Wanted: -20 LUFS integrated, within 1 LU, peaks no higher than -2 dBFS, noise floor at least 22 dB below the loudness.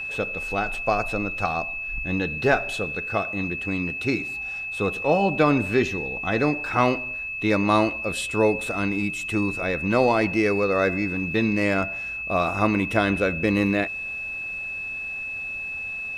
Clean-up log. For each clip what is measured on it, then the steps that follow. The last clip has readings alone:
steady tone 2600 Hz; tone level -29 dBFS; loudness -24.0 LUFS; peak -6.0 dBFS; loudness target -20.0 LUFS
-> notch 2600 Hz, Q 30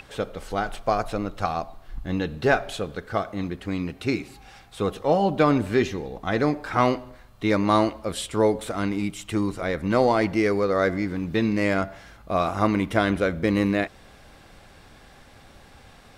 steady tone none; loudness -24.5 LUFS; peak -5.5 dBFS; loudness target -20.0 LUFS
-> gain +4.5 dB; limiter -2 dBFS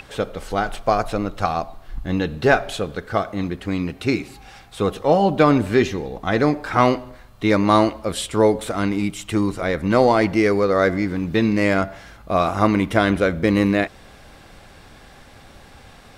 loudness -20.0 LUFS; peak -2.0 dBFS; noise floor -46 dBFS

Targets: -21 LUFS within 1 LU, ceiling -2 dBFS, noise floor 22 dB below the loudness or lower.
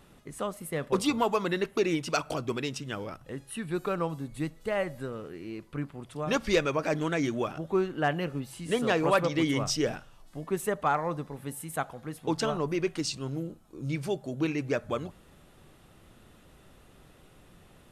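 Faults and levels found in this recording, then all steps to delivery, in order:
loudness -31.0 LUFS; peak -15.0 dBFS; loudness target -21.0 LUFS
-> gain +10 dB

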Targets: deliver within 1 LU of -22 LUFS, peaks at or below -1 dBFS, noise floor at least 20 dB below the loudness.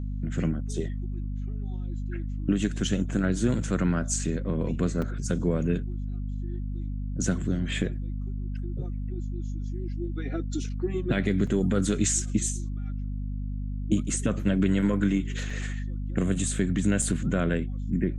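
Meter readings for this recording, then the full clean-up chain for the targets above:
dropouts 4; longest dropout 4.1 ms; hum 50 Hz; harmonics up to 250 Hz; hum level -29 dBFS; loudness -28.5 LUFS; peak -11.5 dBFS; loudness target -22.0 LUFS
-> interpolate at 5.02/11.47/15.5/17.02, 4.1 ms; de-hum 50 Hz, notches 5; gain +6.5 dB

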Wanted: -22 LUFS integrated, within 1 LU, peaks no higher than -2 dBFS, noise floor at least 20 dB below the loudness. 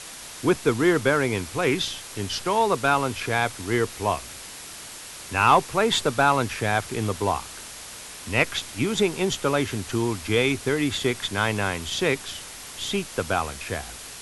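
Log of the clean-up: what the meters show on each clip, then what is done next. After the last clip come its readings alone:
noise floor -40 dBFS; noise floor target -44 dBFS; loudness -24.0 LUFS; peak -6.0 dBFS; loudness target -22.0 LUFS
-> denoiser 6 dB, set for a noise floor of -40 dBFS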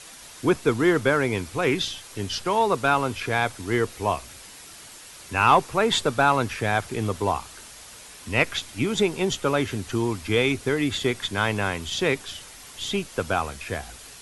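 noise floor -45 dBFS; loudness -24.5 LUFS; peak -6.0 dBFS; loudness target -22.0 LUFS
-> gain +2.5 dB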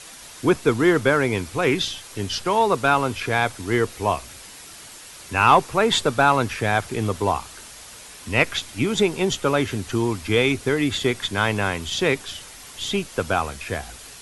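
loudness -22.0 LUFS; peak -3.5 dBFS; noise floor -42 dBFS

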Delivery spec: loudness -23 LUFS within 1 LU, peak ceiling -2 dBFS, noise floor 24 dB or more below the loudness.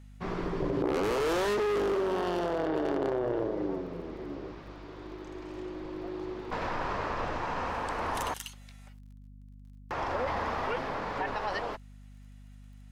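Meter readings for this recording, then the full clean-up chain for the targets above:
ticks 25/s; hum 50 Hz; harmonics up to 250 Hz; hum level -47 dBFS; loudness -32.5 LUFS; peak -19.5 dBFS; loudness target -23.0 LUFS
-> de-click; de-hum 50 Hz, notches 5; gain +9.5 dB

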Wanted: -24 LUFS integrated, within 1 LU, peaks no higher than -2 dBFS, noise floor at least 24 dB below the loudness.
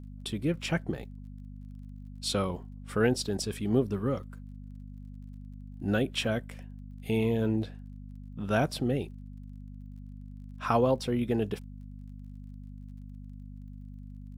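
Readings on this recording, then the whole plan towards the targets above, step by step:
ticks 27/s; hum 50 Hz; harmonics up to 250 Hz; hum level -41 dBFS; loudness -30.5 LUFS; peak -12.0 dBFS; loudness target -24.0 LUFS
-> de-click; de-hum 50 Hz, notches 5; gain +6.5 dB

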